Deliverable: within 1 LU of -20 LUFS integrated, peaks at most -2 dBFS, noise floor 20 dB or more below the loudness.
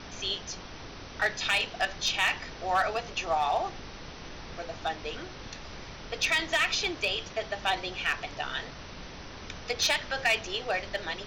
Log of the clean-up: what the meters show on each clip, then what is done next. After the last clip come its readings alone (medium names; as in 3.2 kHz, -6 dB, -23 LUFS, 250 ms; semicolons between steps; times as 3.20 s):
clipped samples 0.5%; clipping level -19.5 dBFS; noise floor -44 dBFS; noise floor target -50 dBFS; loudness -29.5 LUFS; peak level -19.5 dBFS; loudness target -20.0 LUFS
-> clip repair -19.5 dBFS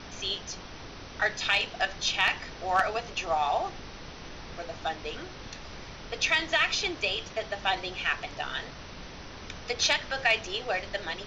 clipped samples 0.0%; noise floor -44 dBFS; noise floor target -49 dBFS
-> noise print and reduce 6 dB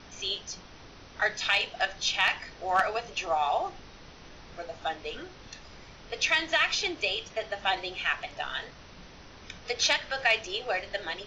noise floor -50 dBFS; loudness -28.5 LUFS; peak level -11.0 dBFS; loudness target -20.0 LUFS
-> trim +8.5 dB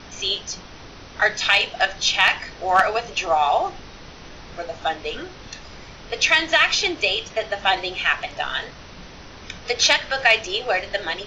loudness -20.0 LUFS; peak level -2.5 dBFS; noise floor -42 dBFS